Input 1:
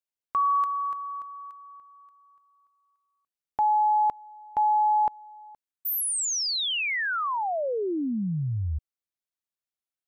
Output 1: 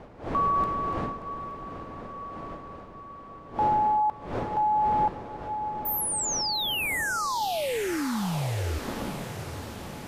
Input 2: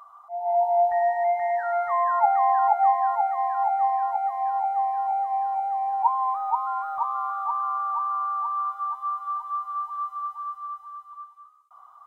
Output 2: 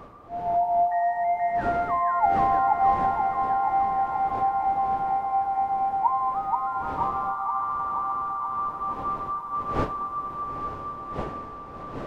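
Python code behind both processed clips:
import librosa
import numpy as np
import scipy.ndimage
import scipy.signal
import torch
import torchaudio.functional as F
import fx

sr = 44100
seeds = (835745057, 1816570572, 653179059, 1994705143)

y = fx.dmg_wind(x, sr, seeds[0], corner_hz=610.0, level_db=-38.0)
y = fx.echo_diffused(y, sr, ms=904, feedback_pct=60, wet_db=-9)
y = y * librosa.db_to_amplitude(-1.5)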